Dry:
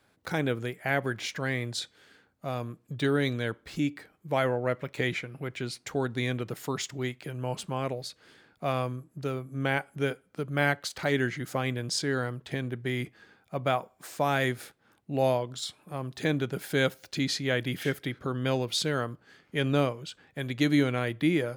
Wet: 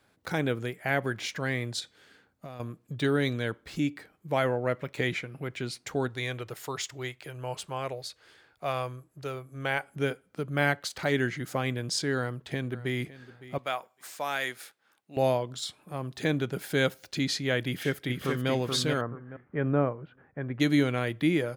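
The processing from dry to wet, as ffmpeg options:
-filter_complex "[0:a]asettb=1/sr,asplit=3[s0][s1][s2];[s0]atrim=end=1.804[s3];[s1]atrim=start=1.8:end=2.6,asetpts=PTS-STARTPTS,afade=t=in:d=0.004:c=qsin,afade=t=out:st=0.796:d=0.004:c=qsin,acompressor=threshold=0.0141:ratio=6:attack=3.2:release=140:knee=1:detection=peak[s4];[s2]atrim=start=2.596[s5];[s3][s4]acrossfade=d=0.004:c1=hsin:c2=qsin[s6];[s6][s5]acrossfade=d=0.004:c1=qsin:c2=hsin,asettb=1/sr,asplit=3[s7][s8][s9];[s7]atrim=end=6.084[s10];[s8]atrim=start=6.08:end=9.83,asetpts=PTS-STARTPTS,afade=t=in:d=0.004:c=qsin,afade=t=out:st=3.746:d=0.004:c=qsin,equalizer=f=210:t=o:w=1:g=-14.5[s11];[s9]atrim=start=9.826[s12];[s10][s11]acrossfade=d=0.004:c1=hsin:c2=qsin[s13];[s13][s12]acrossfade=d=0.004:c1=qsin:c2=hsin,asplit=2[s14][s15];[s15]afade=t=in:st=12.15:d=0.01,afade=t=out:st=13:d=0.01,aecho=0:1:560|1120:0.141254|0.0353134[s16];[s14][s16]amix=inputs=2:normalize=0,asettb=1/sr,asplit=3[s17][s18][s19];[s17]atrim=end=13.584[s20];[s18]atrim=start=13.58:end=15.17,asetpts=PTS-STARTPTS,afade=t=in:d=0.004:c=qsin,afade=t=out:st=1.586:d=0.004:c=qsin,highpass=f=1200:p=1[s21];[s19]atrim=start=15.166[s22];[s20][s21]acrossfade=d=0.004:c1=hsin:c2=qsin[s23];[s23][s22]acrossfade=d=0.004:c1=qsin:c2=hsin,asplit=2[s24][s25];[s25]afade=t=in:st=17.66:d=0.01,afade=t=out:st=18.5:d=0.01,aecho=0:1:430|860|1290|1720:0.668344|0.200503|0.060151|0.0180453[s26];[s24][s26]amix=inputs=2:normalize=0,asettb=1/sr,asplit=3[s27][s28][s29];[s27]atrim=end=19.014[s30];[s28]atrim=start=19.01:end=20.6,asetpts=PTS-STARTPTS,afade=t=in:d=0.004:c=qsin,afade=t=out:st=1.586:d=0.004:c=qsin,lowpass=f=1700:w=0.5412,lowpass=f=1700:w=1.3066[s31];[s29]atrim=start=20.596[s32];[s30][s31]acrossfade=d=0.004:c1=hsin:c2=qsin[s33];[s33][s32]acrossfade=d=0.004:c1=qsin:c2=hsin"

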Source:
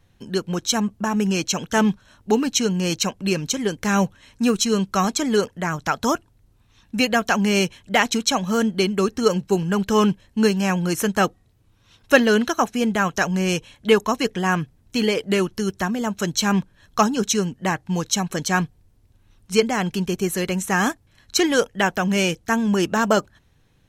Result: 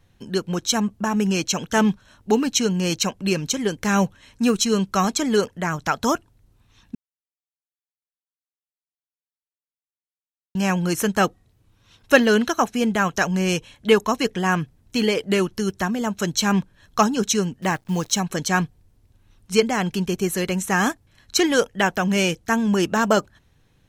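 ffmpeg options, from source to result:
-filter_complex "[0:a]asettb=1/sr,asplit=3[s0][s1][s2];[s0]atrim=end=17.624[s3];[s1]atrim=start=17.62:end=18.2,asetpts=PTS-STARTPTS,afade=t=in:d=0.004:c=qsin,afade=t=out:st=0.576:d=0.004:c=qsin,acrusher=bits=8:dc=4:mix=0:aa=0.000001[s4];[s2]atrim=start=18.196[s5];[s3][s4]acrossfade=d=0.004:c1=hsin:c2=qsin[s6];[s6][s5]acrossfade=d=0.004:c1=qsin:c2=hsin,asplit=3[s7][s8][s9];[s7]atrim=end=6.95,asetpts=PTS-STARTPTS,afade=t=out:st=6.946:d=0.004:c=hsin[s10];[s8]atrim=start=6.95:end=10.55,asetpts=PTS-STARTPTS,volume=0[s11];[s9]atrim=start=10.55,asetpts=PTS-STARTPTS,afade=t=in:d=0.004:c=hsin[s12];[s10][s11][s12]concat=n=3:v=0:a=1"

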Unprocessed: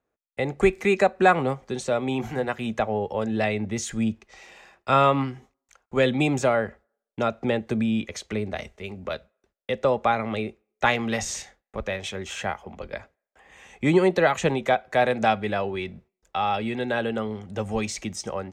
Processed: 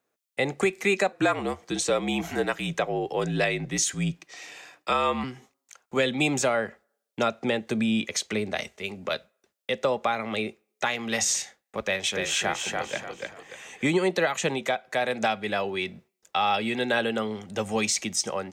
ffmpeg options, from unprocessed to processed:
-filter_complex "[0:a]asettb=1/sr,asplit=3[s0][s1][s2];[s0]atrim=end=1.124[s3];[s1]atrim=start=1.12:end=5.24,asetpts=PTS-STARTPTS,afade=t=in:d=0.004:c=qsin,afade=t=out:st=4.116:d=0.004:c=qsin,afreqshift=-54[s4];[s2]atrim=start=5.236[s5];[s3][s4]acrossfade=d=0.004:c1=hsin:c2=qsin[s6];[s6][s5]acrossfade=d=0.004:c1=qsin:c2=hsin,asettb=1/sr,asplit=3[s7][s8][s9];[s7]atrim=end=11.844[s10];[s8]atrim=start=11.84:end=13.86,asetpts=PTS-STARTPTS,afade=t=in:d=0.004:c=qsin,afade=t=out:st=2.016:d=0.004:c=qsin,asplit=5[s11][s12][s13][s14][s15];[s12]adelay=291,afreqshift=-33,volume=0.668[s16];[s13]adelay=582,afreqshift=-66,volume=0.226[s17];[s14]adelay=873,afreqshift=-99,volume=0.0776[s18];[s15]adelay=1164,afreqshift=-132,volume=0.0263[s19];[s11][s16][s17][s18][s19]amix=inputs=5:normalize=0,atrim=end_sample=89082[s20];[s9]atrim=start=13.856[s21];[s10][s20]acrossfade=d=0.004:c1=hsin:c2=qsin[s22];[s22][s21]acrossfade=d=0.004:c1=qsin:c2=hsin,highpass=140,highshelf=f=2300:g=10,alimiter=limit=0.211:level=0:latency=1:release=424"

